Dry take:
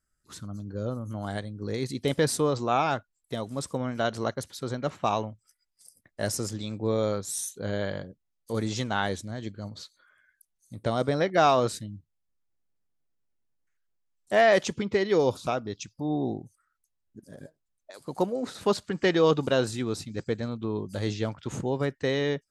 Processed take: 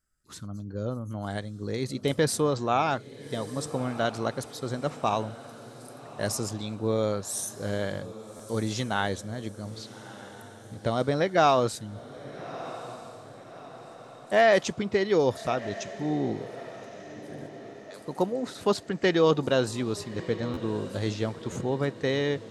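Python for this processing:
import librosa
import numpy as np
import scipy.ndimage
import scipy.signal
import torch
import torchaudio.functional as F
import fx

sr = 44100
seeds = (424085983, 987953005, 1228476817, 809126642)

y = fx.echo_diffused(x, sr, ms=1252, feedback_pct=49, wet_db=-15)
y = fx.buffer_glitch(y, sr, at_s=(8.36, 20.53, 21.52), block=512, repeats=2)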